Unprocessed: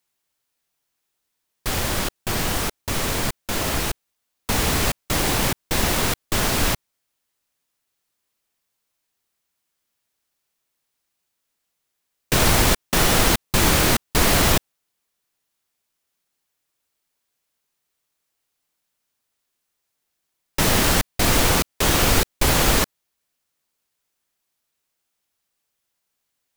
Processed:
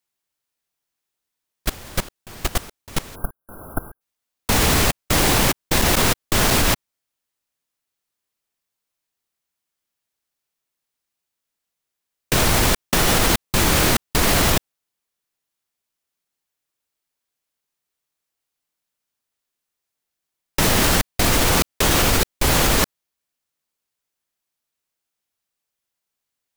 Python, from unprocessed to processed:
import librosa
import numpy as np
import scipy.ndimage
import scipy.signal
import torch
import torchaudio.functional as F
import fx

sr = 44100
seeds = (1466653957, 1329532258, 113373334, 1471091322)

y = fx.spec_erase(x, sr, start_s=3.15, length_s=0.86, low_hz=1600.0, high_hz=10000.0)
y = fx.level_steps(y, sr, step_db=22)
y = F.gain(torch.from_numpy(y), 5.5).numpy()